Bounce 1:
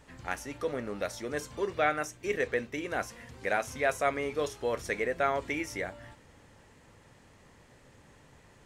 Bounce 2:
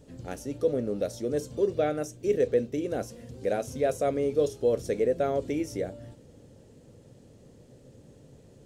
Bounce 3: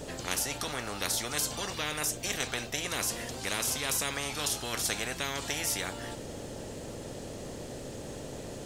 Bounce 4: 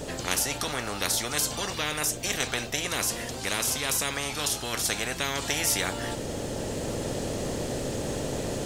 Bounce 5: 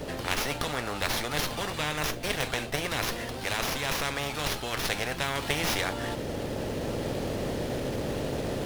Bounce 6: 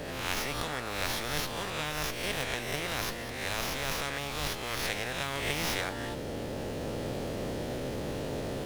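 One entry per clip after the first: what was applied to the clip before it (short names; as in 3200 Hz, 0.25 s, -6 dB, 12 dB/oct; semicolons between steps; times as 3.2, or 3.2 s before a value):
graphic EQ 125/250/500/1000/2000 Hz +7/+5/+9/-11/-11 dB
spectral compressor 10:1
vocal rider within 5 dB 2 s; gain +5 dB
running maximum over 5 samples
spectral swells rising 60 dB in 0.89 s; gain -6 dB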